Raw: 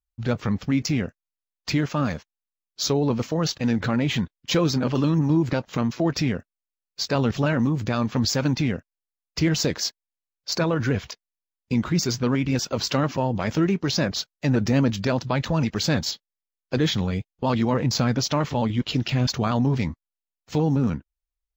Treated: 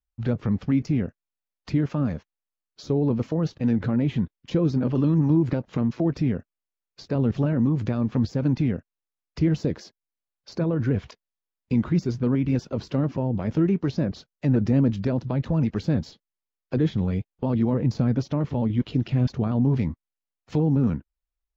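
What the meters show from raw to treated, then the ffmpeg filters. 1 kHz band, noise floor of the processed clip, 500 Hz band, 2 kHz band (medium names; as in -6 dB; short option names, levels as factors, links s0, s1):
-9.0 dB, under -85 dBFS, -2.5 dB, -11.0 dB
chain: -filter_complex "[0:a]acrossover=split=500[s0][s1];[s1]acompressor=threshold=0.0126:ratio=5[s2];[s0][s2]amix=inputs=2:normalize=0,aemphasis=mode=reproduction:type=75fm"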